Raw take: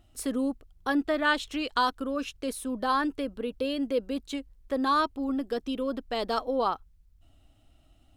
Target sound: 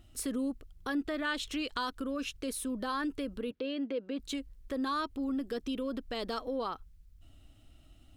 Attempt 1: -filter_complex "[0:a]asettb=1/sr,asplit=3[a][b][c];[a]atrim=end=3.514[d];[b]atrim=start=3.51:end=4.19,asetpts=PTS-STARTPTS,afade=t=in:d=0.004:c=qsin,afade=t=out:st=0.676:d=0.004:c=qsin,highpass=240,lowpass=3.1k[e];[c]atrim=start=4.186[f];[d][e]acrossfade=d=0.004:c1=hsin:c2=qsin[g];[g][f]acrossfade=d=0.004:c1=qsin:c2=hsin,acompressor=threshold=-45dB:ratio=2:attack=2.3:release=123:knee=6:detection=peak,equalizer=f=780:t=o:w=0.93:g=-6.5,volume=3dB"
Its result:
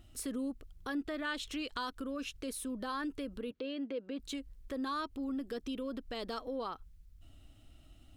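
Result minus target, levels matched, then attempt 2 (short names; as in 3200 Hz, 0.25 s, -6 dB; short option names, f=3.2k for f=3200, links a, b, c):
compressor: peak gain reduction +4 dB
-filter_complex "[0:a]asettb=1/sr,asplit=3[a][b][c];[a]atrim=end=3.514[d];[b]atrim=start=3.51:end=4.19,asetpts=PTS-STARTPTS,afade=t=in:d=0.004:c=qsin,afade=t=out:st=0.676:d=0.004:c=qsin,highpass=240,lowpass=3.1k[e];[c]atrim=start=4.186[f];[d][e]acrossfade=d=0.004:c1=hsin:c2=qsin[g];[g][f]acrossfade=d=0.004:c1=qsin:c2=hsin,acompressor=threshold=-37.5dB:ratio=2:attack=2.3:release=123:knee=6:detection=peak,equalizer=f=780:t=o:w=0.93:g=-6.5,volume=3dB"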